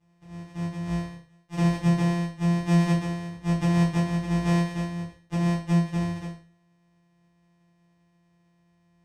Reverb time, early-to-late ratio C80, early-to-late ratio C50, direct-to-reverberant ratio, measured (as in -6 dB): 0.45 s, 10.5 dB, 6.5 dB, -10.5 dB